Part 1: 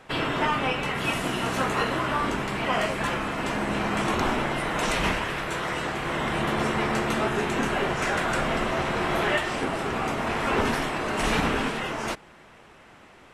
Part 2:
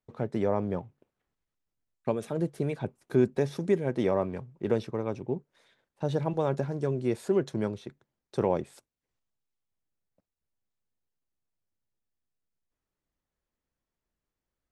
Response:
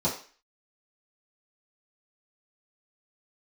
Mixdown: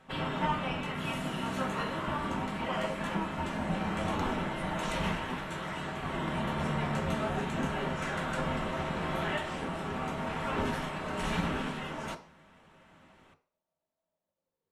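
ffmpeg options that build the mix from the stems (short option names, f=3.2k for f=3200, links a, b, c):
-filter_complex "[0:a]volume=-10dB,asplit=2[a][b];[b]volume=-14.5dB[c];[1:a]acompressor=threshold=-35dB:ratio=6,aeval=exprs='val(0)*sin(2*PI*470*n/s+470*0.4/0.36*sin(2*PI*0.36*n/s))':c=same,volume=-4.5dB,asplit=2[d][e];[e]volume=-8.5dB[f];[2:a]atrim=start_sample=2205[g];[c][f]amix=inputs=2:normalize=0[h];[h][g]afir=irnorm=-1:irlink=0[i];[a][d][i]amix=inputs=3:normalize=0"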